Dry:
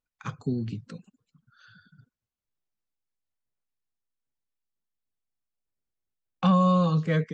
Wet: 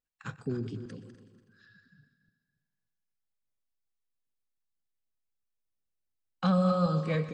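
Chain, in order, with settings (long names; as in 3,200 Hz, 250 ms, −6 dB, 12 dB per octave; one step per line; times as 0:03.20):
feedback delay that plays each chunk backwards 143 ms, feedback 50%, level −11 dB
formants moved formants +2 semitones
echo machine with several playback heads 124 ms, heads first and second, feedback 42%, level −17.5 dB
level −5 dB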